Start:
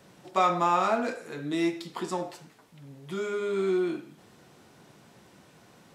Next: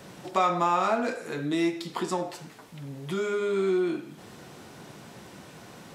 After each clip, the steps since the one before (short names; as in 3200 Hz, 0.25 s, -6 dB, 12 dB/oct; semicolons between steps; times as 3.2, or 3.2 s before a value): compressor 1.5:1, threshold -46 dBFS, peak gain reduction 10 dB; gain +9 dB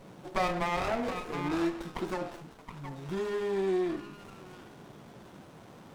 delay with a stepping band-pass 0.721 s, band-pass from 1200 Hz, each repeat 1.4 oct, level -5.5 dB; running maximum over 17 samples; gain -3.5 dB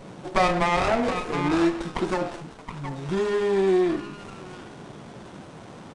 downsampling 22050 Hz; gain +8.5 dB